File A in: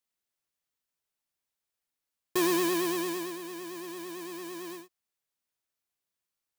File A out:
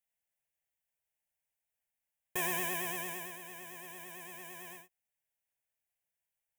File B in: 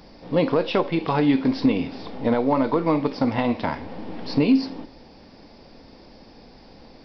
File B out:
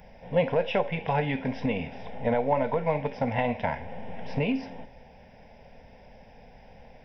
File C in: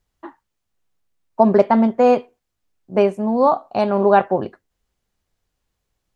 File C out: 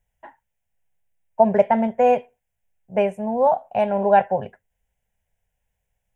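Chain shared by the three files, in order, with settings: static phaser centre 1.2 kHz, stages 6

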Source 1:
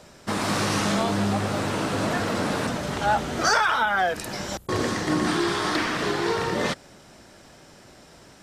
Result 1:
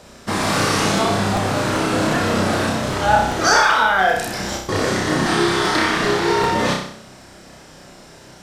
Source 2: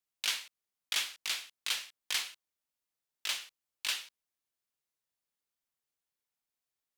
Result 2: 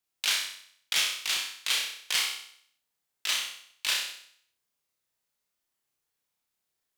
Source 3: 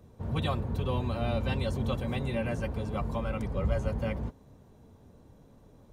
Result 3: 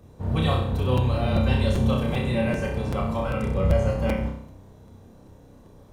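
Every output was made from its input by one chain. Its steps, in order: flutter echo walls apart 5.4 m, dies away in 0.61 s; crackling interface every 0.39 s, samples 256, repeat, from 0.97 s; trim +4 dB

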